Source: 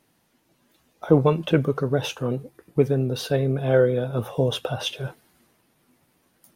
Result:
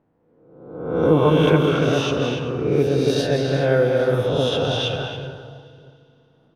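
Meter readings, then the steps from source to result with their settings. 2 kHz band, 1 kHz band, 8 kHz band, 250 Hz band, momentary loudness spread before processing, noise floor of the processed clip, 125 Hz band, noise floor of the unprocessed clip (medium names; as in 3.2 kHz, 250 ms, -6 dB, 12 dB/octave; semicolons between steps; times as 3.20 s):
+7.0 dB, +6.0 dB, +3.0 dB, +4.5 dB, 10 LU, -60 dBFS, +2.5 dB, -67 dBFS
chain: reverse spectral sustain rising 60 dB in 1.02 s; on a send: multi-tap echo 202/282/384/834 ms -7.5/-5.5/-9.5/-18.5 dB; on the sum: level-controlled noise filter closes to 870 Hz, open at -12 dBFS; peaking EQ 230 Hz -2 dB 1.6 oct; FDN reverb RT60 2.8 s, high-frequency decay 0.95×, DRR 13 dB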